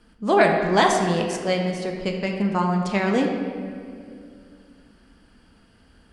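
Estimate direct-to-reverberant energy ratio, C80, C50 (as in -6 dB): 1.5 dB, 5.5 dB, 4.0 dB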